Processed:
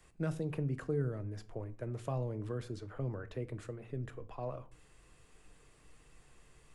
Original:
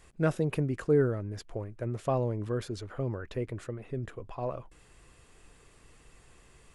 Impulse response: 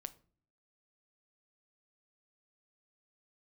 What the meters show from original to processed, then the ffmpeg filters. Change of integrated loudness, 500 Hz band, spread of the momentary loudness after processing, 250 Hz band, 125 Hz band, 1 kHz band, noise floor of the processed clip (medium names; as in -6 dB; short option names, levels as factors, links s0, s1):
-7.5 dB, -9.5 dB, 9 LU, -7.5 dB, -5.0 dB, -9.0 dB, -64 dBFS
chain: -filter_complex "[0:a]acrossover=split=180|3000[s0][s1][s2];[s1]acompressor=threshold=0.0282:ratio=4[s3];[s0][s3][s2]amix=inputs=3:normalize=0,acrossover=split=100|2200[s4][s5][s6];[s6]alimiter=level_in=6.68:limit=0.0631:level=0:latency=1:release=275,volume=0.15[s7];[s4][s5][s7]amix=inputs=3:normalize=0[s8];[1:a]atrim=start_sample=2205,afade=t=out:st=0.2:d=0.01,atrim=end_sample=9261[s9];[s8][s9]afir=irnorm=-1:irlink=0,volume=0.891"